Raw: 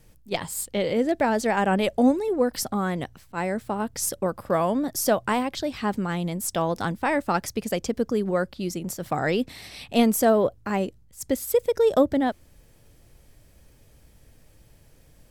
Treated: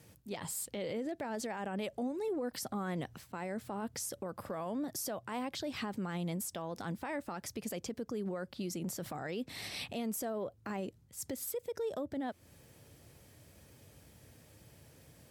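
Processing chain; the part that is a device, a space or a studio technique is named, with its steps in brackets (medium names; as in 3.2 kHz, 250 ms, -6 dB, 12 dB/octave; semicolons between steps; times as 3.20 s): podcast mastering chain (high-pass 77 Hz 24 dB/octave; compression 4:1, threshold -31 dBFS, peak gain reduction 14.5 dB; peak limiter -30 dBFS, peak gain reduction 11.5 dB; MP3 96 kbps 48 kHz)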